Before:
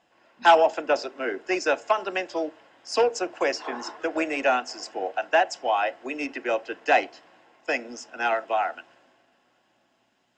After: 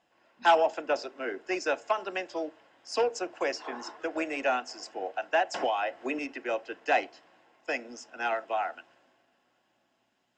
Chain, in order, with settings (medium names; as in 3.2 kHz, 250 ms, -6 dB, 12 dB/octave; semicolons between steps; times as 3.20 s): 5.54–6.19 s: three bands compressed up and down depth 100%; trim -5.5 dB